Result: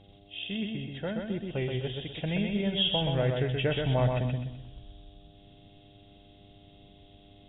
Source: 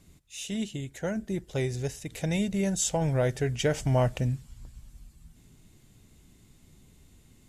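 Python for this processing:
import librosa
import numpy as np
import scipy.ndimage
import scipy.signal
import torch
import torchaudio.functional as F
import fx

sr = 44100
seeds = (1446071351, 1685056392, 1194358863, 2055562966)

y = fx.freq_compress(x, sr, knee_hz=2500.0, ratio=4.0)
y = fx.dmg_buzz(y, sr, base_hz=100.0, harmonics=8, level_db=-55.0, tilt_db=-3, odd_only=False)
y = fx.echo_feedback(y, sr, ms=127, feedback_pct=35, wet_db=-4.0)
y = y * 10.0 ** (-3.0 / 20.0)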